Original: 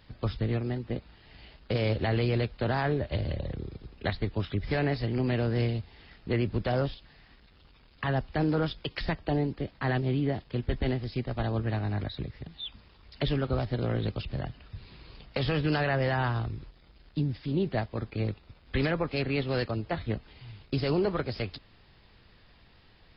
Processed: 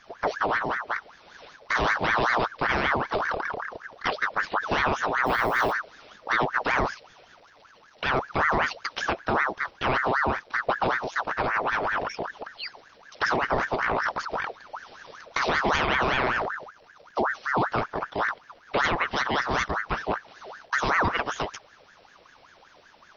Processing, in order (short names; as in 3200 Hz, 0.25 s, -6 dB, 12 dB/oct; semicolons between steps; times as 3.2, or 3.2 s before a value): 5.25–5.71 added noise violet -55 dBFS; ring modulator with a swept carrier 1100 Hz, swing 55%, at 5.2 Hz; gain +6 dB